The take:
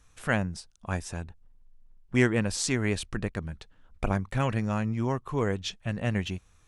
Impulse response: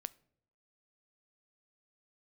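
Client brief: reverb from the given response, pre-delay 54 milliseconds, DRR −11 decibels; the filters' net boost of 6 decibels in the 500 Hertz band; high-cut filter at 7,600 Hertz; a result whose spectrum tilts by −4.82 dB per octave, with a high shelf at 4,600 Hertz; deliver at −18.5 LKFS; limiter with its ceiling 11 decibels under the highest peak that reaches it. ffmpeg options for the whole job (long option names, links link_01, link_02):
-filter_complex "[0:a]lowpass=7600,equalizer=frequency=500:width_type=o:gain=7.5,highshelf=frequency=4600:gain=7,alimiter=limit=-18.5dB:level=0:latency=1,asplit=2[link_01][link_02];[1:a]atrim=start_sample=2205,adelay=54[link_03];[link_02][link_03]afir=irnorm=-1:irlink=0,volume=14.5dB[link_04];[link_01][link_04]amix=inputs=2:normalize=0,volume=1.5dB"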